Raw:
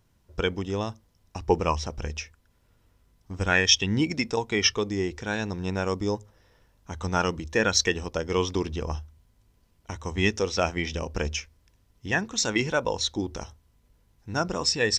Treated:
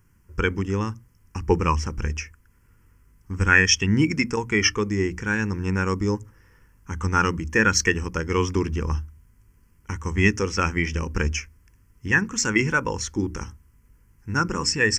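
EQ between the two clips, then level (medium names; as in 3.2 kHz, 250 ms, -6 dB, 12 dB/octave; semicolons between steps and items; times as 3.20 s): hum notches 60/120/180/240/300 Hz; static phaser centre 1.6 kHz, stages 4; +7.5 dB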